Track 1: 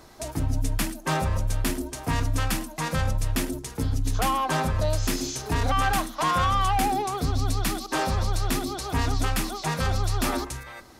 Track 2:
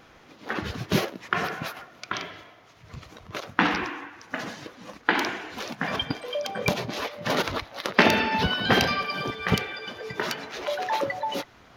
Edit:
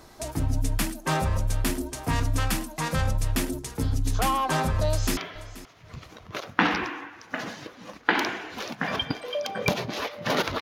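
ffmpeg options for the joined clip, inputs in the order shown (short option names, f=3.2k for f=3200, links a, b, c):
-filter_complex "[0:a]apad=whole_dur=10.61,atrim=end=10.61,atrim=end=5.172[a];[1:a]atrim=start=2.168:end=7.61[b];[a][b]acrossfade=d=0.004:c1=hsin:c2=hsin,asplit=2[c][d];[d]afade=t=in:st=4.87:d=0.01,afade=t=out:st=5.17:d=0.01,aecho=0:1:480|960:0.141254|0.0141254[e];[c][e]amix=inputs=2:normalize=0"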